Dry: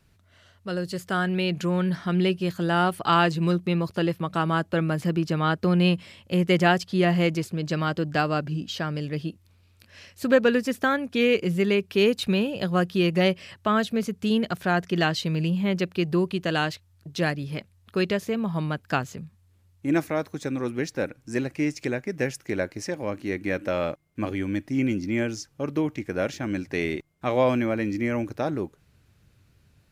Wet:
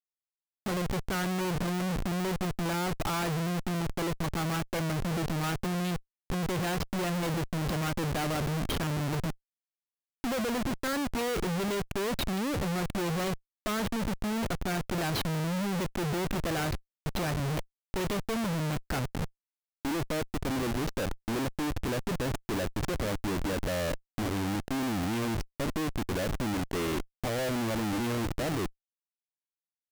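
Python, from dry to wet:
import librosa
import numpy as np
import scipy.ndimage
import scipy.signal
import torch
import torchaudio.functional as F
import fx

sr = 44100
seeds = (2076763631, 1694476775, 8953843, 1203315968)

y = fx.high_shelf(x, sr, hz=3200.0, db=-9.5)
y = fx.schmitt(y, sr, flips_db=-35.5)
y = y * 10.0 ** (-4.0 / 20.0)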